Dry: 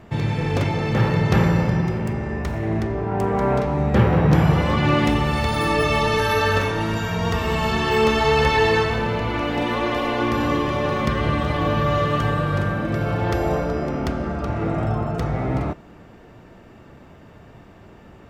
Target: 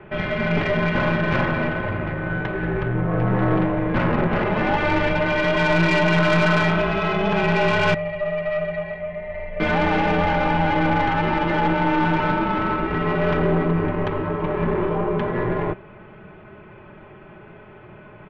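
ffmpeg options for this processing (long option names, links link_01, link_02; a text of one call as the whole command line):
ffmpeg -i in.wav -filter_complex "[0:a]aecho=1:1:4.6:0.57,asplit=2[link_01][link_02];[link_02]alimiter=limit=-14.5dB:level=0:latency=1:release=20,volume=3dB[link_03];[link_01][link_03]amix=inputs=2:normalize=0,asettb=1/sr,asplit=3[link_04][link_05][link_06];[link_04]atrim=end=7.944[link_07];[link_05]atrim=start=7.94:end=9.6,asetpts=PTS-STARTPTS,afade=type=in:duration=0.004:curve=qsin,afade=type=out:start_time=1.656:duration=0.004:curve=qsin,asplit=3[link_08][link_09][link_10];[link_08]bandpass=frequency=300:width_type=q:width=8,volume=0dB[link_11];[link_09]bandpass=frequency=870:width_type=q:width=8,volume=-6dB[link_12];[link_10]bandpass=frequency=2240:width_type=q:width=8,volume=-9dB[link_13];[link_11][link_12][link_13]amix=inputs=3:normalize=0[link_14];[link_06]atrim=start=9.596[link_15];[link_07][link_14]acrossfade=duration=0.004:curve1=hsin:curve2=qsin[link_16];[link_16][link_15]acrossfade=duration=0.004:curve1=qsin:curve2=hsin,highpass=frequency=350:width_type=q:width=0.5412,highpass=frequency=350:width_type=q:width=1.307,lowpass=frequency=3200:width_type=q:width=0.5176,lowpass=frequency=3200:width_type=q:width=0.7071,lowpass=frequency=3200:width_type=q:width=1.932,afreqshift=-270,aeval=exprs='(tanh(4.47*val(0)+0.5)-tanh(0.5))/4.47':channel_layout=same" out.wav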